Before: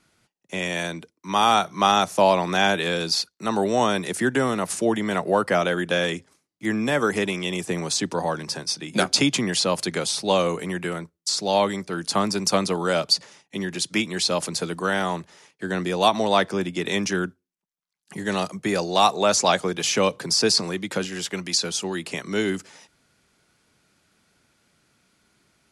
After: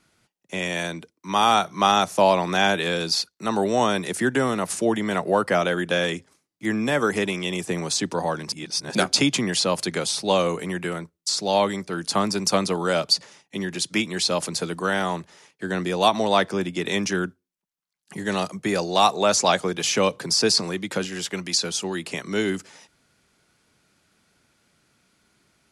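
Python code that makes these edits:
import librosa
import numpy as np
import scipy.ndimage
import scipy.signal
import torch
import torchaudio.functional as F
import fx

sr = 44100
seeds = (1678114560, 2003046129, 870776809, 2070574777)

y = fx.edit(x, sr, fx.reverse_span(start_s=8.52, length_s=0.43), tone=tone)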